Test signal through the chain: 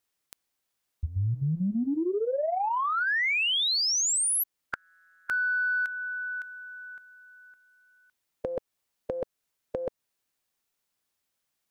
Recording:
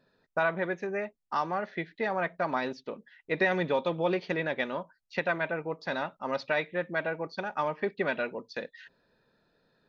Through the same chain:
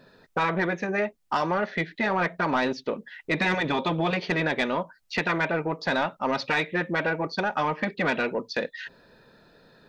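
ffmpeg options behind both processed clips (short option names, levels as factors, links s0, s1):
-filter_complex "[0:a]afftfilt=real='re*lt(hypot(re,im),0.224)':imag='im*lt(hypot(re,im),0.224)':win_size=1024:overlap=0.75,asplit=2[s0][s1];[s1]acompressor=threshold=0.00447:ratio=6,volume=1.06[s2];[s0][s2]amix=inputs=2:normalize=0,asoftclip=type=tanh:threshold=0.0708,volume=2.51"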